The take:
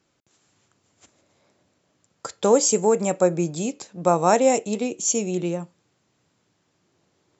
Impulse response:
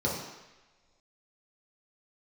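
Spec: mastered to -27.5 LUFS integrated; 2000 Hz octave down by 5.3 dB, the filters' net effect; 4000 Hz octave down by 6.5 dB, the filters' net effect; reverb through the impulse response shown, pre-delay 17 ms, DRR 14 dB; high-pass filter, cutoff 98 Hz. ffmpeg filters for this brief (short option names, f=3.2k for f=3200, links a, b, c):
-filter_complex "[0:a]highpass=98,equalizer=f=2k:t=o:g=-4.5,equalizer=f=4k:t=o:g=-9,asplit=2[a][b];[1:a]atrim=start_sample=2205,adelay=17[c];[b][c]afir=irnorm=-1:irlink=0,volume=-23.5dB[d];[a][d]amix=inputs=2:normalize=0,volume=-5.5dB"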